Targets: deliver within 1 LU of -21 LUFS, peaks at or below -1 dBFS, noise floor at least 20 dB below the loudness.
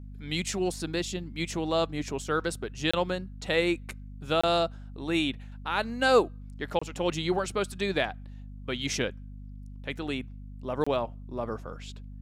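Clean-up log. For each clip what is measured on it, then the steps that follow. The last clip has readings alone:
dropouts 4; longest dropout 25 ms; hum 50 Hz; highest harmonic 250 Hz; hum level -40 dBFS; loudness -30.0 LUFS; peak level -10.0 dBFS; loudness target -21.0 LUFS
-> interpolate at 2.91/4.41/6.79/10.84 s, 25 ms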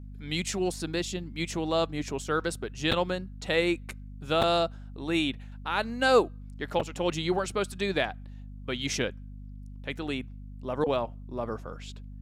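dropouts 0; hum 50 Hz; highest harmonic 200 Hz; hum level -40 dBFS
-> hum notches 50/100/150/200 Hz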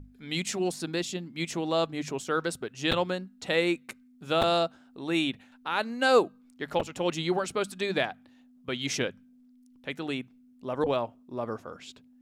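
hum not found; loudness -30.0 LUFS; peak level -10.5 dBFS; loudness target -21.0 LUFS
-> trim +9 dB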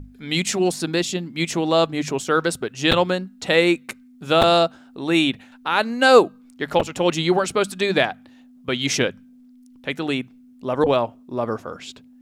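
loudness -21.0 LUFS; peak level -1.5 dBFS; noise floor -49 dBFS

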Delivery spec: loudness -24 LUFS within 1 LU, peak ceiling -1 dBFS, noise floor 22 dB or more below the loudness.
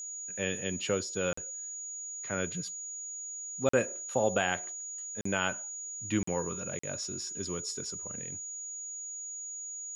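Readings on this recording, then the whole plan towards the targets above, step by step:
dropouts 5; longest dropout 44 ms; steady tone 6.8 kHz; tone level -38 dBFS; loudness -34.0 LUFS; peak level -13.0 dBFS; loudness target -24.0 LUFS
-> interpolate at 1.33/3.69/5.21/6.23/6.79 s, 44 ms; band-stop 6.8 kHz, Q 30; trim +10 dB

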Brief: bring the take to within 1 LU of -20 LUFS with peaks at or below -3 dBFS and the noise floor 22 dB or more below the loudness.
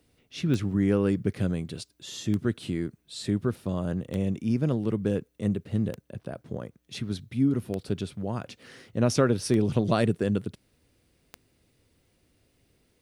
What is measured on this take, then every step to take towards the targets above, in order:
clicks found 7; loudness -28.5 LUFS; peak level -9.0 dBFS; loudness target -20.0 LUFS
-> de-click; trim +8.5 dB; peak limiter -3 dBFS

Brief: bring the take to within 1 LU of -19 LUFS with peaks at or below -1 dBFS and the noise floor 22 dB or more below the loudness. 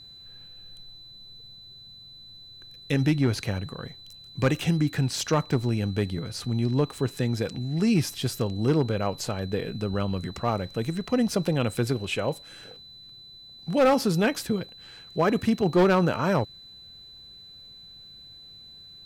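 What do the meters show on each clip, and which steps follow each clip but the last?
clipped samples 0.6%; clipping level -15.0 dBFS; steady tone 4 kHz; tone level -45 dBFS; loudness -26.0 LUFS; peak level -15.0 dBFS; loudness target -19.0 LUFS
-> clip repair -15 dBFS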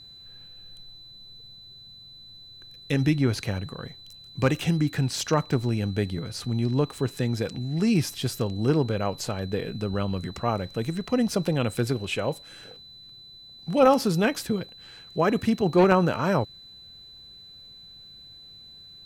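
clipped samples 0.0%; steady tone 4 kHz; tone level -45 dBFS
-> band-stop 4 kHz, Q 30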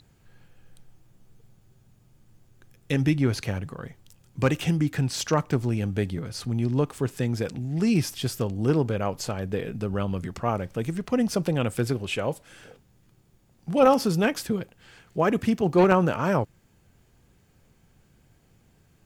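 steady tone not found; loudness -25.5 LUFS; peak level -6.0 dBFS; loudness target -19.0 LUFS
-> trim +6.5 dB; peak limiter -1 dBFS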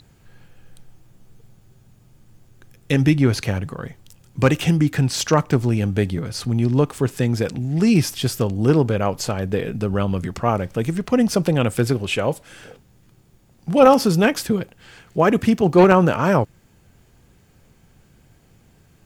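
loudness -19.5 LUFS; peak level -1.0 dBFS; noise floor -55 dBFS

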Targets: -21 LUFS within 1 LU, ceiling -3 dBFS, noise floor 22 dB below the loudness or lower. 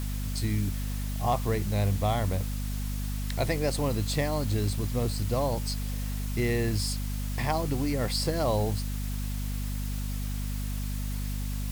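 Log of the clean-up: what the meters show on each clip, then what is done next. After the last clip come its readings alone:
hum 50 Hz; highest harmonic 250 Hz; hum level -29 dBFS; noise floor -32 dBFS; noise floor target -52 dBFS; loudness -30.0 LUFS; peak level -13.5 dBFS; loudness target -21.0 LUFS
-> de-hum 50 Hz, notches 5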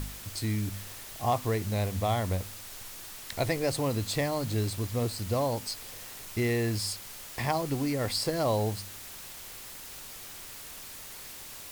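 hum not found; noise floor -44 dBFS; noise floor target -54 dBFS
-> noise print and reduce 10 dB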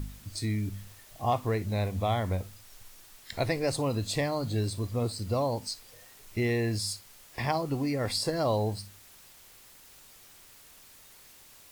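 noise floor -54 dBFS; loudness -31.0 LUFS; peak level -14.5 dBFS; loudness target -21.0 LUFS
-> trim +10 dB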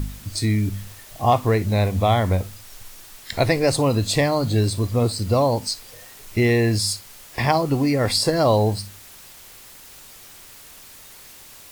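loudness -21.0 LUFS; peak level -4.5 dBFS; noise floor -44 dBFS

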